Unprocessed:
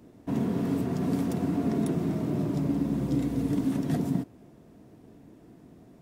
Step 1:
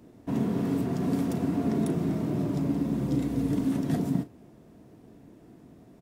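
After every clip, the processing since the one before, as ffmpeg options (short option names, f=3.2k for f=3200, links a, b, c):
-filter_complex "[0:a]asplit=2[a][b];[b]adelay=37,volume=-13dB[c];[a][c]amix=inputs=2:normalize=0"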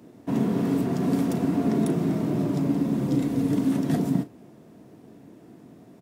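-af "highpass=120,volume=4dB"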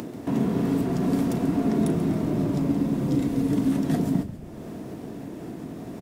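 -filter_complex "[0:a]acompressor=mode=upward:threshold=-24dB:ratio=2.5,asplit=5[a][b][c][d][e];[b]adelay=137,afreqshift=-59,volume=-13.5dB[f];[c]adelay=274,afreqshift=-118,volume=-20.4dB[g];[d]adelay=411,afreqshift=-177,volume=-27.4dB[h];[e]adelay=548,afreqshift=-236,volume=-34.3dB[i];[a][f][g][h][i]amix=inputs=5:normalize=0"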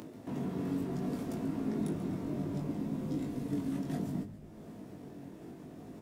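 -af "flanger=delay=19:depth=2.3:speed=0.66,volume=-8.5dB"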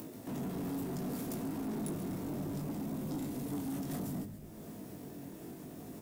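-af "aemphasis=mode=production:type=50fm,asoftclip=type=tanh:threshold=-35dB,volume=1.5dB"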